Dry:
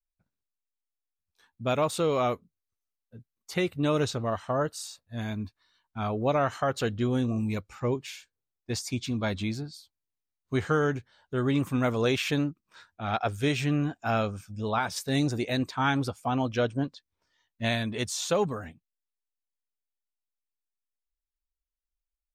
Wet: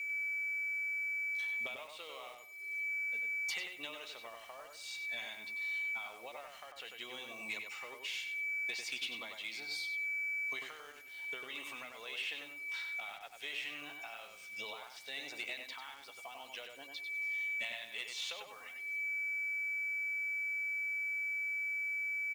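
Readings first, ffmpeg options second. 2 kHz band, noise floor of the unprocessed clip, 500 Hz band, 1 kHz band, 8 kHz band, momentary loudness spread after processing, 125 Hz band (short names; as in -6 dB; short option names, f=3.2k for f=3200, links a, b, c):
+2.5 dB, under -85 dBFS, -23.5 dB, -19.0 dB, -11.5 dB, 12 LU, under -40 dB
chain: -filter_complex "[0:a]bandreject=f=2.4k:w=5.4,acrossover=split=3400[a][b];[b]acompressor=threshold=-46dB:ratio=4:attack=1:release=60[c];[a][c]amix=inputs=2:normalize=0,highpass=740,equalizer=f=1.3k:w=0.36:g=11,aeval=exprs='val(0)+0.00355*sin(2*PI*2300*n/s)':c=same,acompressor=threshold=-46dB:ratio=16,highshelf=f=1.9k:t=q:w=3:g=8,asoftclip=type=tanh:threshold=-31dB,acrusher=bits=9:mix=0:aa=0.000001,asplit=2[d][e];[e]adelay=96,lowpass=f=3.2k:p=1,volume=-4dB,asplit=2[f][g];[g]adelay=96,lowpass=f=3.2k:p=1,volume=0.24,asplit=2[h][i];[i]adelay=96,lowpass=f=3.2k:p=1,volume=0.24[j];[f][h][j]amix=inputs=3:normalize=0[k];[d][k]amix=inputs=2:normalize=0"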